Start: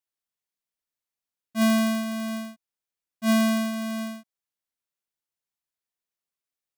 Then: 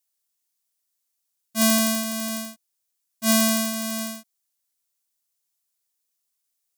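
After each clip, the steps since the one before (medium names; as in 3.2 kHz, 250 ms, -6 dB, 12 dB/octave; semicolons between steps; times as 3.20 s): tone controls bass -4 dB, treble +13 dB; trim +1.5 dB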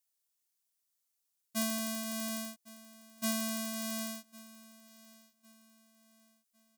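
compression 4:1, threshold -27 dBFS, peak gain reduction 12 dB; feedback delay 1105 ms, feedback 36%, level -20 dB; trim -4.5 dB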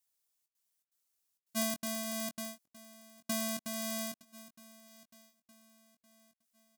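trance gate "xxxxx.xxx." 164 bpm -60 dB; doubling 21 ms -7.5 dB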